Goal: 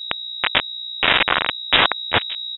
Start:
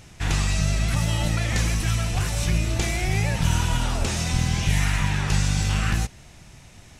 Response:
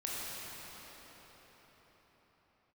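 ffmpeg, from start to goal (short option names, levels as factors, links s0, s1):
-filter_complex "[0:a]afwtdn=0.0447,highpass=500,afftfilt=real='re*gte(hypot(re,im),0.0251)':imag='im*gte(hypot(re,im),0.0251)':win_size=1024:overlap=0.75,aeval=exprs='val(0)*sin(2*PI*64*n/s)':c=same,asetrate=119952,aresample=44100,aresample=16000,acrusher=bits=4:mix=0:aa=0.000001,aresample=44100,aeval=exprs='0.112*sin(PI/2*2.51*val(0)/0.112)':c=same,aeval=exprs='val(0)+0.00158*(sin(2*PI*60*n/s)+sin(2*PI*2*60*n/s)/2+sin(2*PI*3*60*n/s)/3+sin(2*PI*4*60*n/s)/4+sin(2*PI*5*60*n/s)/5)':c=same,asplit=2[s0][s1];[s1]adelay=1749,volume=0.224,highshelf=f=4000:g=-39.4[s2];[s0][s2]amix=inputs=2:normalize=0,lowpass=f=3300:t=q:w=0.5098,lowpass=f=3300:t=q:w=0.6013,lowpass=f=3300:t=q:w=0.9,lowpass=f=3300:t=q:w=2.563,afreqshift=-3900,alimiter=level_in=23.7:limit=0.891:release=50:level=0:latency=1,volume=0.891"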